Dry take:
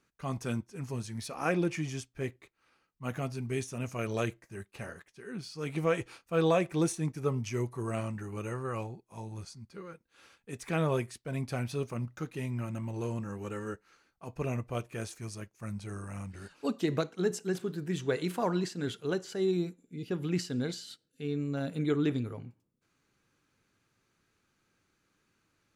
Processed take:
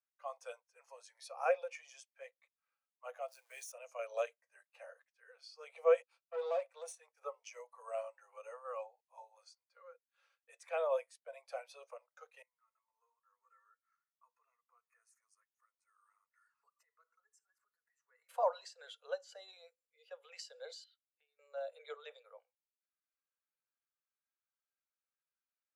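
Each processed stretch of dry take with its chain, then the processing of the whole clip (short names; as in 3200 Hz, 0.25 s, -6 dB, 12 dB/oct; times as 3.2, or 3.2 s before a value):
3.28–3.72 switching spikes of -37.5 dBFS + bell 1600 Hz +5 dB 0.25 oct
6.02–7.21 HPF 370 Hz + expander -51 dBFS + tube stage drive 30 dB, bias 0.65
12.42–18.29 fixed phaser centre 1400 Hz, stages 4 + notch comb 790 Hz + compressor 12:1, threshold -48 dBFS
20.84–21.39 low-pass opened by the level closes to 2300 Hz, open at -28.5 dBFS + weighting filter A + compressor 10:1, threshold -53 dBFS
whole clip: steep high-pass 490 Hz 96 dB/oct; dynamic EQ 1700 Hz, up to -4 dB, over -51 dBFS, Q 1.2; spectral expander 1.5:1; gain +1.5 dB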